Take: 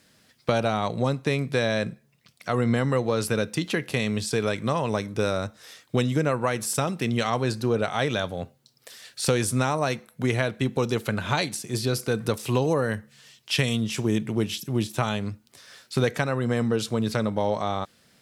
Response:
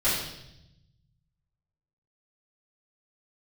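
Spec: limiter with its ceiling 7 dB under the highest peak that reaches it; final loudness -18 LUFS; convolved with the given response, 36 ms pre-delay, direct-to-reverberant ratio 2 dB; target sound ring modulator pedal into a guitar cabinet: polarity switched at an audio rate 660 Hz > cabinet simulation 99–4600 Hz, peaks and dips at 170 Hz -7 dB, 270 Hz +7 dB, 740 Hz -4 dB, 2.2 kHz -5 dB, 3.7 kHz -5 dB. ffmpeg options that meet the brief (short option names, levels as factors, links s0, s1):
-filter_complex "[0:a]alimiter=limit=0.188:level=0:latency=1,asplit=2[s0][s1];[1:a]atrim=start_sample=2205,adelay=36[s2];[s1][s2]afir=irnorm=-1:irlink=0,volume=0.178[s3];[s0][s3]amix=inputs=2:normalize=0,aeval=exprs='val(0)*sgn(sin(2*PI*660*n/s))':c=same,highpass=99,equalizer=f=170:t=q:w=4:g=-7,equalizer=f=270:t=q:w=4:g=7,equalizer=f=740:t=q:w=4:g=-4,equalizer=f=2200:t=q:w=4:g=-5,equalizer=f=3700:t=q:w=4:g=-5,lowpass=f=4600:w=0.5412,lowpass=f=4600:w=1.3066,volume=2.37"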